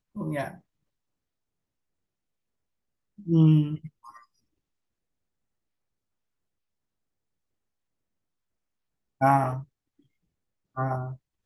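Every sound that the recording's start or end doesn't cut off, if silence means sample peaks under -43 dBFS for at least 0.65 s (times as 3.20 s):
3.19–4.18 s
9.21–9.63 s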